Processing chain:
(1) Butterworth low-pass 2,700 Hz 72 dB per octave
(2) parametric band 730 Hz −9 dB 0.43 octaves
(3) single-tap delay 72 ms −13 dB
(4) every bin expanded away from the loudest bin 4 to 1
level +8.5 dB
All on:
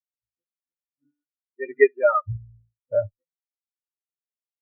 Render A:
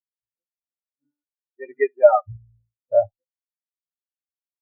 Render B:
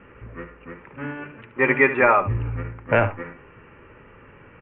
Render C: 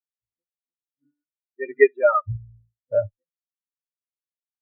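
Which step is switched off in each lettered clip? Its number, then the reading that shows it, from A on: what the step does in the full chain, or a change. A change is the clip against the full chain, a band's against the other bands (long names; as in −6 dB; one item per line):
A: 2, 125 Hz band −10.5 dB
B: 4, 500 Hz band −10.5 dB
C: 1, change in integrated loudness +1.0 LU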